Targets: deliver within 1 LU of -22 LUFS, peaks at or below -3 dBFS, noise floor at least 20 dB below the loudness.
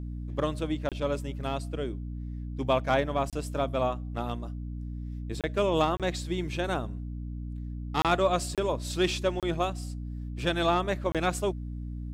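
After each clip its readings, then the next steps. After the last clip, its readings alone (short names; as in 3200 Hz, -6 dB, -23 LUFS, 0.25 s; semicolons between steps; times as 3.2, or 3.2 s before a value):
dropouts 8; longest dropout 27 ms; hum 60 Hz; harmonics up to 300 Hz; hum level -34 dBFS; loudness -30.5 LUFS; peak -10.5 dBFS; loudness target -22.0 LUFS
-> interpolate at 0.89/3.3/5.41/5.97/8.02/8.55/9.4/11.12, 27 ms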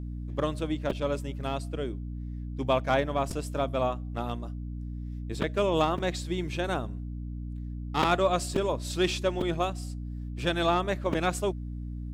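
dropouts 0; hum 60 Hz; harmonics up to 300 Hz; hum level -34 dBFS
-> de-hum 60 Hz, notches 5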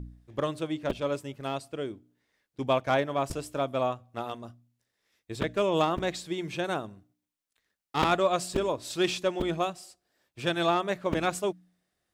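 hum none; loudness -30.0 LUFS; peak -8.5 dBFS; loudness target -22.0 LUFS
-> gain +8 dB; limiter -3 dBFS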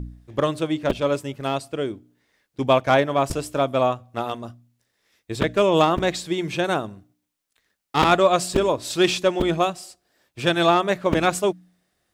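loudness -22.0 LUFS; peak -3.0 dBFS; noise floor -77 dBFS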